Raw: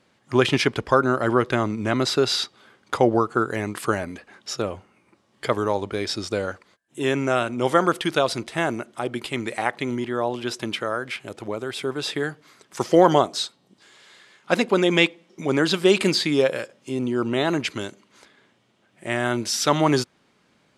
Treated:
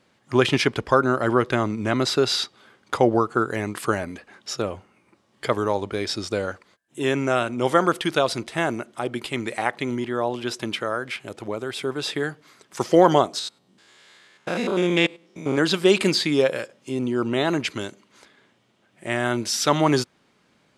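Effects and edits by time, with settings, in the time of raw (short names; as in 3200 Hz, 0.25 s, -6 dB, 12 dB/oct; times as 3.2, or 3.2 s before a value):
13.39–15.58 stepped spectrum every 0.1 s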